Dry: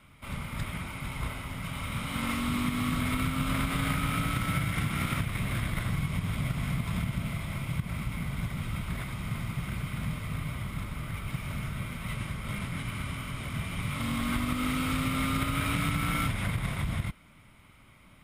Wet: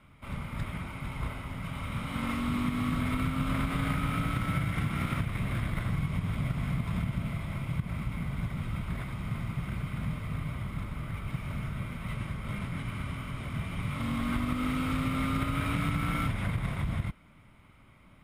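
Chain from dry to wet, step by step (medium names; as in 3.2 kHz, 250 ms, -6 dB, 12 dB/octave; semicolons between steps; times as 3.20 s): treble shelf 2.8 kHz -9.5 dB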